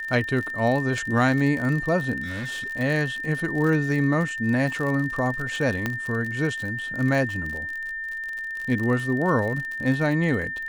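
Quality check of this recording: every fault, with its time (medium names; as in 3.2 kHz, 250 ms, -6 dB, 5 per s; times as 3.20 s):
crackle 54 per s -29 dBFS
whine 1.8 kHz -29 dBFS
2.22–2.68 s: clipped -28 dBFS
5.86 s: pop -11 dBFS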